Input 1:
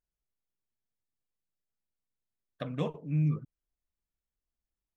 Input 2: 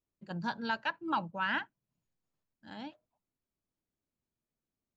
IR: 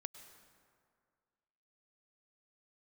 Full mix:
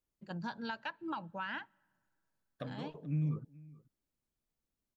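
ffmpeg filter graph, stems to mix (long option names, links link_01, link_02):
-filter_complex "[0:a]alimiter=level_in=0.5dB:limit=-24dB:level=0:latency=1:release=94,volume=-0.5dB,equalizer=frequency=2400:width=1:gain=-4,volume=-2.5dB,asplit=2[link_01][link_02];[link_02]volume=-21.5dB[link_03];[1:a]acompressor=threshold=-35dB:ratio=6,volume=-2dB,asplit=3[link_04][link_05][link_06];[link_05]volume=-19.5dB[link_07];[link_06]apad=whole_len=218823[link_08];[link_01][link_08]sidechaincompress=threshold=-49dB:ratio=8:attack=8.9:release=136[link_09];[2:a]atrim=start_sample=2205[link_10];[link_07][link_10]afir=irnorm=-1:irlink=0[link_11];[link_03]aecho=0:1:430:1[link_12];[link_09][link_04][link_11][link_12]amix=inputs=4:normalize=0"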